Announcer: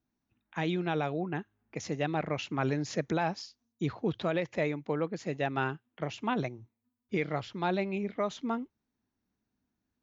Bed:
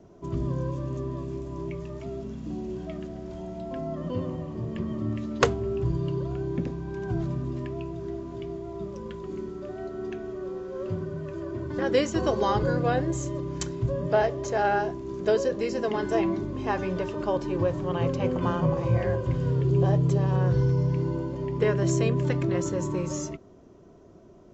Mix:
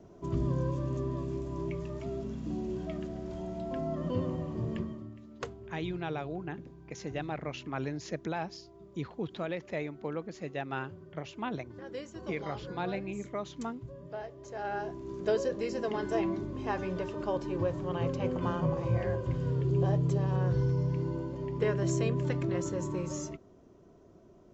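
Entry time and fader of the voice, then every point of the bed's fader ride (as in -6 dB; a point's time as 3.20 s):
5.15 s, -5.0 dB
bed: 4.75 s -1.5 dB
5.12 s -18 dB
14.34 s -18 dB
15.03 s -5.5 dB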